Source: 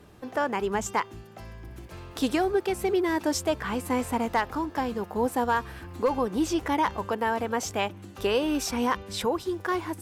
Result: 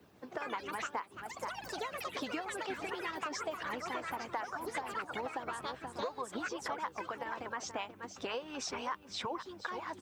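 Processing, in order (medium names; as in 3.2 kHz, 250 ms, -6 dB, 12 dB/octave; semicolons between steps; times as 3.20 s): high-pass 84 Hz 24 dB/octave; on a send: delay 478 ms -11.5 dB; on the sum: dynamic bell 1.1 kHz, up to +6 dB, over -40 dBFS, Q 0.9; low-pass 6.6 kHz 24 dB/octave; ever faster or slower copies 156 ms, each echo +6 st, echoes 3, each echo -6 dB; harmonic-percussive split harmonic -16 dB; compression, threshold -32 dBFS, peak gain reduction 14.5 dB; added noise blue -76 dBFS; trim -3.5 dB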